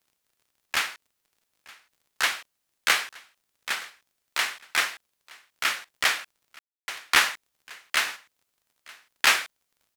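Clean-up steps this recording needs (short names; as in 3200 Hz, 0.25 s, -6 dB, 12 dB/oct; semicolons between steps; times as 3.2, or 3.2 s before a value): de-click; room tone fill 6.59–6.88; inverse comb 0.92 s -23 dB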